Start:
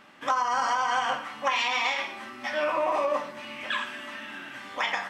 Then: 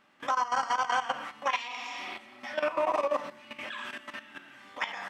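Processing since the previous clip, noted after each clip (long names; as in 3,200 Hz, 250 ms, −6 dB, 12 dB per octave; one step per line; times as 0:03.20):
healed spectral selection 0:01.72–0:02.38, 430–4,900 Hz both
output level in coarse steps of 13 dB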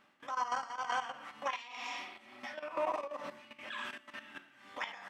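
brickwall limiter −22.5 dBFS, peak gain reduction 7 dB
amplitude tremolo 2.1 Hz, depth 69%
level −1.5 dB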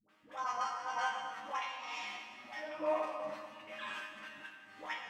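resonators tuned to a chord G#2 fifth, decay 0.23 s
all-pass dispersion highs, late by 91 ms, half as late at 520 Hz
convolution reverb RT60 1.8 s, pre-delay 35 ms, DRR 5 dB
level +9 dB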